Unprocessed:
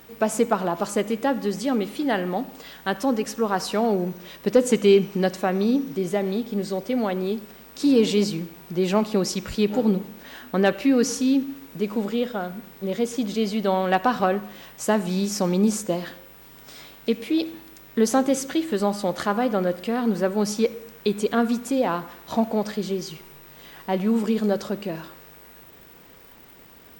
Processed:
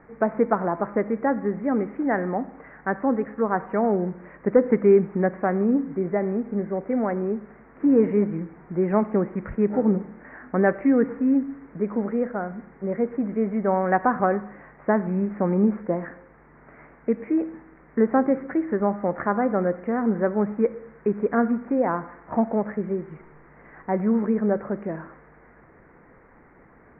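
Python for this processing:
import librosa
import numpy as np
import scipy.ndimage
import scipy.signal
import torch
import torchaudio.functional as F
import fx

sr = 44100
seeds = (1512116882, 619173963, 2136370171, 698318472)

y = scipy.signal.sosfilt(scipy.signal.butter(12, 2100.0, 'lowpass', fs=sr, output='sos'), x)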